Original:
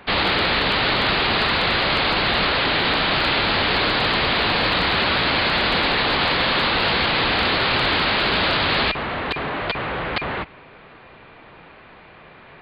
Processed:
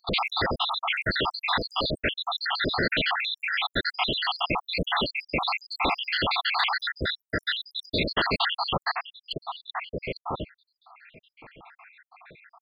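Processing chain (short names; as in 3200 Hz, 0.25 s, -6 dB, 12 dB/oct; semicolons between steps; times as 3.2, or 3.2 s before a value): random spectral dropouts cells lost 82%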